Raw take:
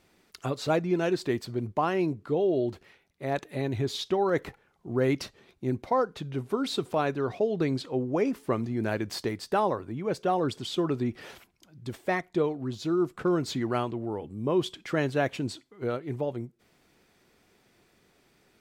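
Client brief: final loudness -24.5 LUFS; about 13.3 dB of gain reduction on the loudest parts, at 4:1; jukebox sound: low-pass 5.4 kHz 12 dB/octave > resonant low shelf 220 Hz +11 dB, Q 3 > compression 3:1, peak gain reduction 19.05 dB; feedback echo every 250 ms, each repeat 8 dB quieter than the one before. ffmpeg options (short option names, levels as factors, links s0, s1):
-af "acompressor=threshold=0.0126:ratio=4,lowpass=5400,lowshelf=f=220:t=q:w=3:g=11,aecho=1:1:250|500|750|1000|1250:0.398|0.159|0.0637|0.0255|0.0102,acompressor=threshold=0.00501:ratio=3,volume=11.2"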